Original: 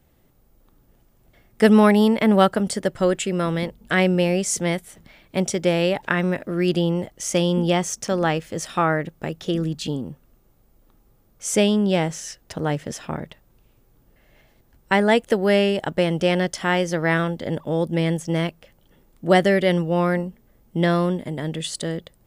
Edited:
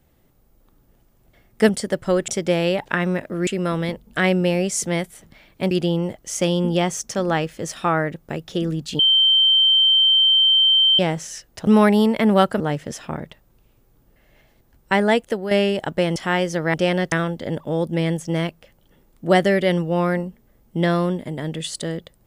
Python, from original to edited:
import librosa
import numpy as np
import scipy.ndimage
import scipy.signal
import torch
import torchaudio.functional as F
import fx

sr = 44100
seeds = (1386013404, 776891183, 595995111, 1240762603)

y = fx.edit(x, sr, fx.move(start_s=1.69, length_s=0.93, to_s=12.6),
    fx.move(start_s=5.45, length_s=1.19, to_s=3.21),
    fx.bleep(start_s=9.92, length_s=2.0, hz=3120.0, db=-12.0),
    fx.fade_out_to(start_s=15.1, length_s=0.41, floor_db=-9.0),
    fx.move(start_s=16.16, length_s=0.38, to_s=17.12), tone=tone)